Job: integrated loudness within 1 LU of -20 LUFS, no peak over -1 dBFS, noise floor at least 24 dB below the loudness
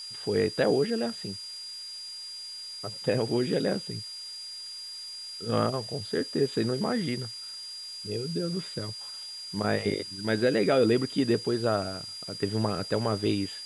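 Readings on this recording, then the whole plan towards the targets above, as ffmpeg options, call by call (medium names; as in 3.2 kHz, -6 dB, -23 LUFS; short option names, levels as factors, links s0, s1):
steady tone 4.8 kHz; tone level -38 dBFS; noise floor -41 dBFS; noise floor target -54 dBFS; loudness -29.5 LUFS; peak level -12.0 dBFS; loudness target -20.0 LUFS
-> -af "bandreject=f=4800:w=30"
-af "afftdn=nr=13:nf=-41"
-af "volume=2.99"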